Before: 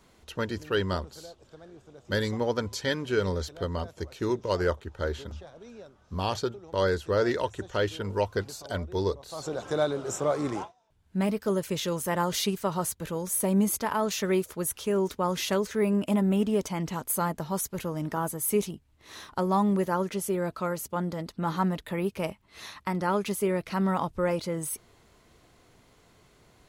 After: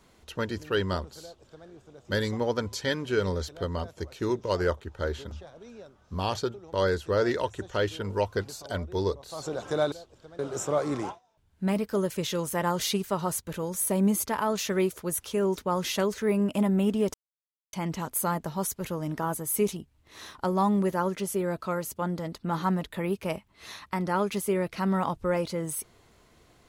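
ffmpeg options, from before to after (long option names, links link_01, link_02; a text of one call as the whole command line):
ffmpeg -i in.wav -filter_complex "[0:a]asplit=4[link_01][link_02][link_03][link_04];[link_01]atrim=end=9.922[link_05];[link_02]atrim=start=1.208:end=1.682[link_06];[link_03]atrim=start=9.918:end=16.67,asetpts=PTS-STARTPTS,afade=type=out:start_time=6.748:duration=0.004:curve=hsin,apad=pad_dur=0.59[link_07];[link_04]atrim=start=16.67,asetpts=PTS-STARTPTS,afade=type=in:duration=0.004:curve=hsin[link_08];[link_05][link_06]acrossfade=duration=0.004:curve1=hsin:curve2=hsin[link_09];[link_07][link_08]concat=n=2:v=0:a=1[link_10];[link_09][link_10]acrossfade=duration=0.004:curve1=hsin:curve2=hsin" out.wav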